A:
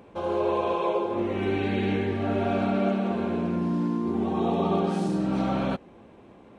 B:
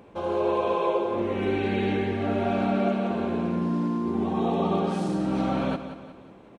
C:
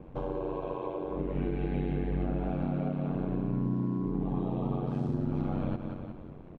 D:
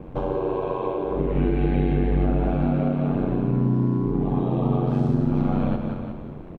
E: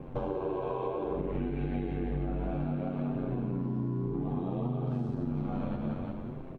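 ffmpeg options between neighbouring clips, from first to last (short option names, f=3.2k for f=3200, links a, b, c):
-af "aecho=1:1:180|360|540|720|900:0.282|0.13|0.0596|0.0274|0.0126"
-af "aeval=exprs='val(0)*sin(2*PI*46*n/s)':c=same,acompressor=threshold=-34dB:ratio=4,aemphasis=mode=reproduction:type=riaa,volume=-1.5dB"
-af "aecho=1:1:40.82|157.4:0.316|0.251,volume=8.5dB"
-af "flanger=delay=7.5:depth=7.9:regen=42:speed=0.62:shape=sinusoidal,acompressor=threshold=-29dB:ratio=6"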